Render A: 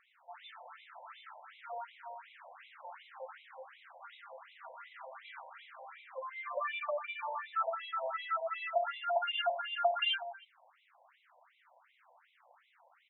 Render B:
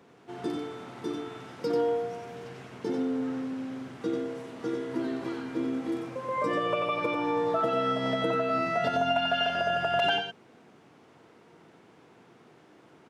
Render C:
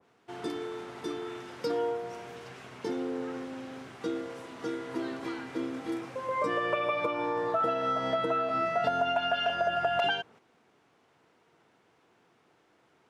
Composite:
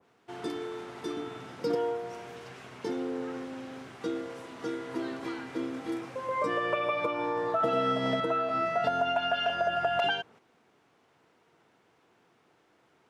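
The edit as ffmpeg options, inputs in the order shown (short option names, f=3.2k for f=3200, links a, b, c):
-filter_complex "[1:a]asplit=2[a][b];[2:a]asplit=3[c][d][e];[c]atrim=end=1.172[f];[a]atrim=start=1.168:end=1.752[g];[d]atrim=start=1.748:end=7.632[h];[b]atrim=start=7.628:end=8.202[i];[e]atrim=start=8.198[j];[f][g]acrossfade=d=0.004:c1=hsin:c2=hsin[k];[k][h]acrossfade=d=0.004:c1=hsin:c2=hsin[l];[l][i]acrossfade=d=0.004:c1=hsin:c2=hsin[m];[m][j]acrossfade=d=0.004:c1=hsin:c2=hsin"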